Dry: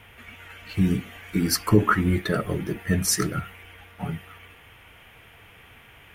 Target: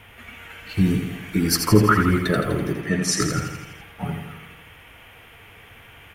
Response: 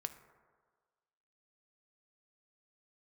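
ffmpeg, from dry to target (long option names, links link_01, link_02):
-filter_complex "[0:a]asettb=1/sr,asplit=3[link_01][link_02][link_03];[link_01]atrim=end=2.734[link_04];[link_02]atrim=start=2.73:end=3.21,asetpts=PTS-STARTPTS,afade=type=in:duration=0.004:curve=qsin,afade=type=out:start_time=0.476:duration=0.004:curve=qsin,highpass=180,lowpass=6900[link_05];[link_03]atrim=start=3.206[link_06];[link_04][link_05]acrossfade=duration=0.004:curve1=hsin:curve2=qsin[link_07];[link_07][link_06]acrossfade=duration=0.004:curve1=qsin:curve2=hsin,aecho=1:1:83|166|249|332|415|498|581|664:0.473|0.279|0.165|0.0972|0.0573|0.0338|0.02|0.0118,volume=2.5dB"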